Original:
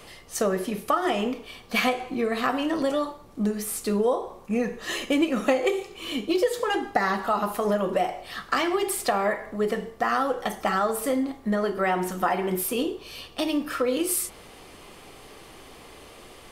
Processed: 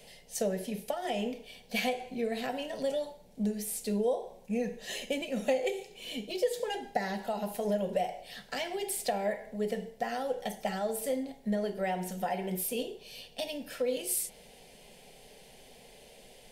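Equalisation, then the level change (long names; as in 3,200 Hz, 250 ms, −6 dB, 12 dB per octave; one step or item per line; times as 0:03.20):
phaser with its sweep stopped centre 320 Hz, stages 6
−5.0 dB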